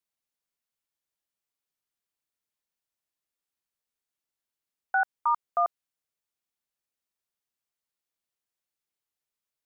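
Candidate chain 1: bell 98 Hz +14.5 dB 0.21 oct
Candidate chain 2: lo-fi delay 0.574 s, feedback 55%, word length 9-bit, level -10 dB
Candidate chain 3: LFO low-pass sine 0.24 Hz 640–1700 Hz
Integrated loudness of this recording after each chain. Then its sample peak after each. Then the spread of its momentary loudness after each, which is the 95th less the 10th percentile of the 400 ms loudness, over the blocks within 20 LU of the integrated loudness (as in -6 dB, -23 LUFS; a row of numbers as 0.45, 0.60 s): -28.5, -31.0, -23.5 LUFS; -16.5, -14.5, -11.5 dBFS; 3, 22, 3 LU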